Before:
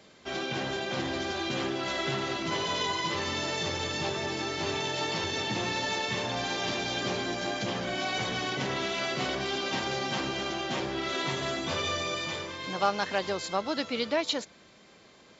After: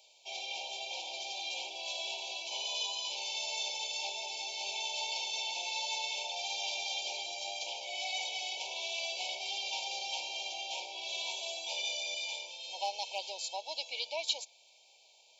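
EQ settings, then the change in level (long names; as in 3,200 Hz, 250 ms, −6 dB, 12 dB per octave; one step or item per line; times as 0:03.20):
high-pass filter 640 Hz 24 dB per octave
linear-phase brick-wall band-stop 980–2,200 Hz
spectral tilt +2 dB per octave
−5.5 dB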